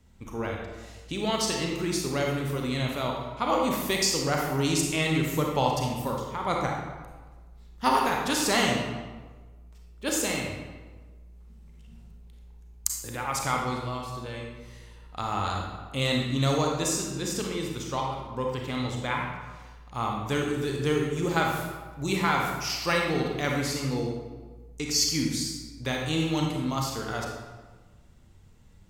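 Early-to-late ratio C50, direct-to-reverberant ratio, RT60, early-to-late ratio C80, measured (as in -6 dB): 1.0 dB, -0.5 dB, 1.4 s, 3.5 dB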